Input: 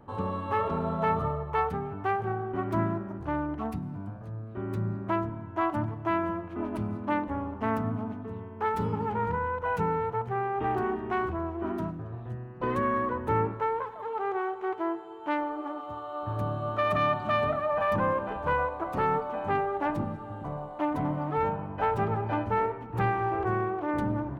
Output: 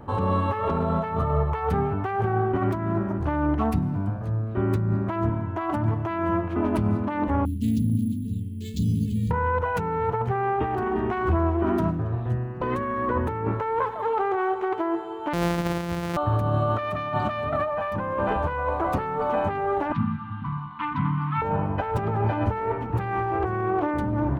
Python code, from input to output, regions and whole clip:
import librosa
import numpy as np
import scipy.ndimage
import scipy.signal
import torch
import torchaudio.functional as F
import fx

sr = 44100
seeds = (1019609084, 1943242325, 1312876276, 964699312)

y = fx.chain(x, sr, fx.ellip_bandstop(low_hz=250.0, high_hz=3800.0, order=3, stop_db=70),
    fx.high_shelf(hz=2200.0, db=9.0),
    fx.resample_bad(factor=4, down='filtered', up='hold'), at=(7.45, 9.31))
y = fx.chain(y, sr, fx.sample_sort(block=256),
    fx.high_shelf(hz=3300.0, db=-8.5), at=(15.33, 16.17))
y = fx.chain(y, sr, fx.cheby1_bandstop(low_hz=240.0, high_hz=1000.0, order=4),
    fx.cabinet(low_hz=130.0, low_slope=12, high_hz=3800.0, hz=(290.0, 780.0, 1800.0), db=(5, 4, -4)), at=(19.92, 21.42))
y = fx.over_compress(y, sr, threshold_db=-32.0, ratio=-1.0)
y = fx.peak_eq(y, sr, hz=76.0, db=6.0, octaves=0.84)
y = y * 10.0 ** (7.0 / 20.0)